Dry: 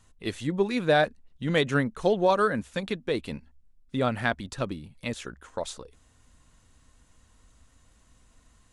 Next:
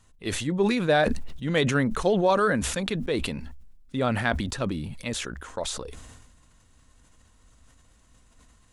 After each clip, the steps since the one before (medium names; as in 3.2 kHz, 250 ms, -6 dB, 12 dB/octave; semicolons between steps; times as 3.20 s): decay stretcher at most 37 dB/s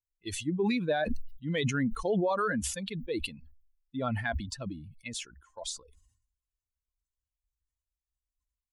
expander on every frequency bin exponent 2; peak limiter -20.5 dBFS, peak gain reduction 7.5 dB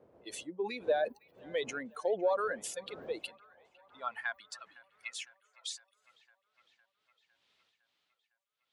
wind noise 81 Hz -32 dBFS; high-pass sweep 510 Hz -> 3.5 kHz, 2.99–5.99 s; feedback echo behind a band-pass 507 ms, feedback 65%, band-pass 1.5 kHz, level -21.5 dB; trim -6.5 dB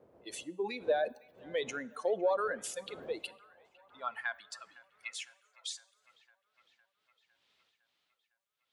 plate-style reverb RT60 0.83 s, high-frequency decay 0.8×, DRR 19 dB